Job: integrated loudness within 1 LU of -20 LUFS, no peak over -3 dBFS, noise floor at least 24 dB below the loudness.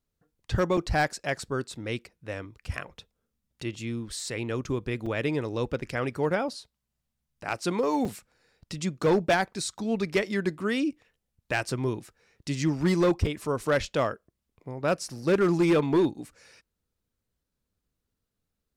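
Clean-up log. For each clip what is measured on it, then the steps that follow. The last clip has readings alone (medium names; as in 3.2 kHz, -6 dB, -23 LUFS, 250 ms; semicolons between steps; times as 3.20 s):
clipped samples 0.7%; clipping level -17.0 dBFS; dropouts 4; longest dropout 4.3 ms; loudness -28.5 LUFS; peak level -17.0 dBFS; loudness target -20.0 LUFS
-> clip repair -17 dBFS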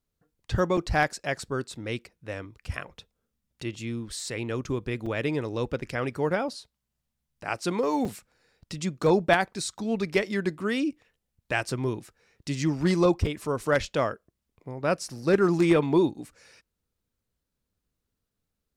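clipped samples 0.0%; dropouts 4; longest dropout 4.3 ms
-> interpolate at 0.77/5.06/8.05/13.26 s, 4.3 ms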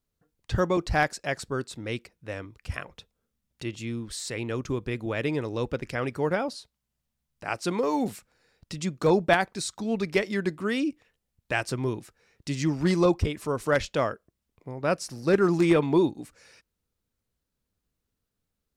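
dropouts 0; loudness -27.5 LUFS; peak level -8.0 dBFS; loudness target -20.0 LUFS
-> trim +7.5 dB; peak limiter -3 dBFS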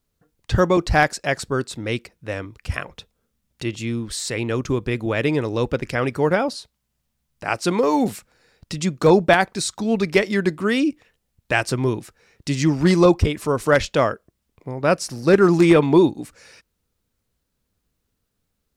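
loudness -20.5 LUFS; peak level -3.0 dBFS; noise floor -75 dBFS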